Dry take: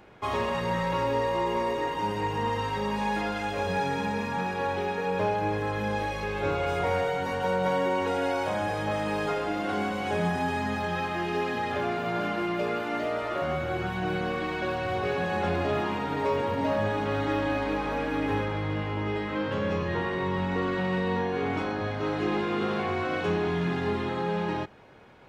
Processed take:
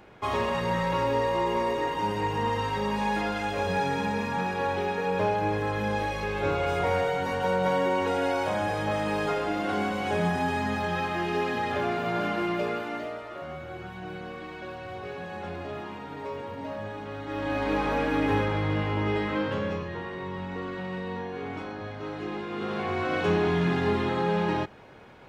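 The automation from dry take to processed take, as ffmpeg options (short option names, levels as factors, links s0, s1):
-af "volume=13.3,afade=t=out:st=12.52:d=0.72:silence=0.316228,afade=t=in:st=17.26:d=0.53:silence=0.251189,afade=t=out:st=19.26:d=0.65:silence=0.334965,afade=t=in:st=22.49:d=0.83:silence=0.334965"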